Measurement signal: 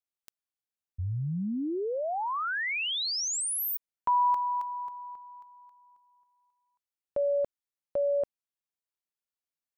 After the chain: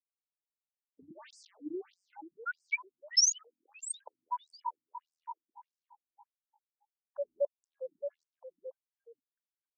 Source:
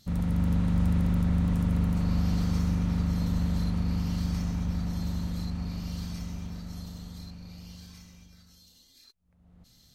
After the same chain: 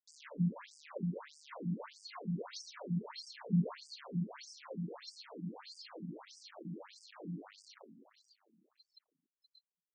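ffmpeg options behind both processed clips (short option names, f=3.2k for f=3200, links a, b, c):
-filter_complex "[0:a]highpass=56,afftfilt=real='re*gte(hypot(re,im),0.00631)':imag='im*gte(hypot(re,im),0.00631)':win_size=1024:overlap=0.75,equalizer=f=1.2k:t=o:w=1.5:g=-4.5,bandreject=f=50:t=h:w=6,bandreject=f=100:t=h:w=6,bandreject=f=150:t=h:w=6,aecho=1:1:1.9:0.84,adynamicequalizer=threshold=0.00282:dfrequency=3100:dqfactor=2.1:tfrequency=3100:tqfactor=2.1:attack=5:release=100:ratio=0.375:range=2.5:mode=cutabove:tftype=bell,acrossover=split=130|2800[a][b][c];[b]acompressor=threshold=-34dB:ratio=4:attack=9.7:release=21:knee=2.83:detection=peak[d];[a][d][c]amix=inputs=3:normalize=0,aphaser=in_gain=1:out_gain=1:delay=3.4:decay=0.53:speed=0.27:type=triangular,acrossover=split=340|550|1900[e][f][g][h];[e]aeval=exprs='val(0)*gte(abs(val(0)),0.015)':c=same[i];[i][f][g][h]amix=inputs=4:normalize=0,asplit=4[j][k][l][m];[k]adelay=473,afreqshift=-52,volume=-11dB[n];[l]adelay=946,afreqshift=-104,volume=-21.2dB[o];[m]adelay=1419,afreqshift=-156,volume=-31.3dB[p];[j][n][o][p]amix=inputs=4:normalize=0,afftfilt=real='re*between(b*sr/1024,210*pow(6700/210,0.5+0.5*sin(2*PI*1.6*pts/sr))/1.41,210*pow(6700/210,0.5+0.5*sin(2*PI*1.6*pts/sr))*1.41)':imag='im*between(b*sr/1024,210*pow(6700/210,0.5+0.5*sin(2*PI*1.6*pts/sr))/1.41,210*pow(6700/210,0.5+0.5*sin(2*PI*1.6*pts/sr))*1.41)':win_size=1024:overlap=0.75,volume=1.5dB"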